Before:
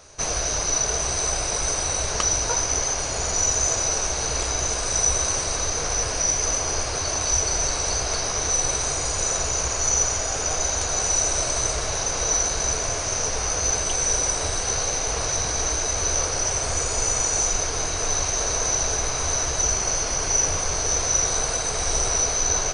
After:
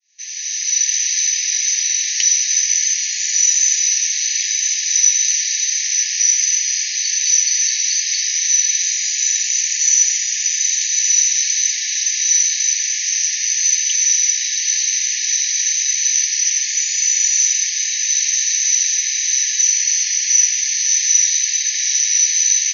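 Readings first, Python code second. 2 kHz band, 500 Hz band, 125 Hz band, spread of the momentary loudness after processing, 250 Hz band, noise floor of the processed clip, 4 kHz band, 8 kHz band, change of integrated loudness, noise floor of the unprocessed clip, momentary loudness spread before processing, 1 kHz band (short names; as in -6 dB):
+5.5 dB, under -40 dB, under -40 dB, 4 LU, under -40 dB, -22 dBFS, +8.5 dB, +8.5 dB, +8.0 dB, -27 dBFS, 3 LU, under -40 dB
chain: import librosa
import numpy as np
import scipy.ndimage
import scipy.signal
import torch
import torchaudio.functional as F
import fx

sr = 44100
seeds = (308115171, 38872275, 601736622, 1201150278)

y = fx.fade_in_head(x, sr, length_s=0.93)
y = fx.brickwall_bandpass(y, sr, low_hz=1700.0, high_hz=6800.0)
y = y * librosa.db_to_amplitude(8.5)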